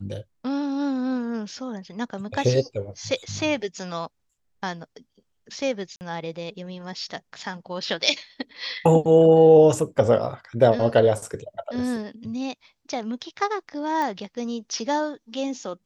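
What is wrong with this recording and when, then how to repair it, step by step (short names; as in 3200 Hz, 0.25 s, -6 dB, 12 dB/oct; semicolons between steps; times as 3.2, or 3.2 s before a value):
5.96–6.01 gap 49 ms
14.02 pop -16 dBFS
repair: de-click; interpolate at 5.96, 49 ms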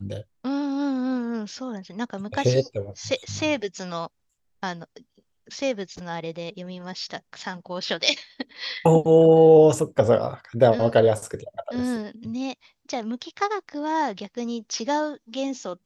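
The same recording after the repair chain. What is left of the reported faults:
none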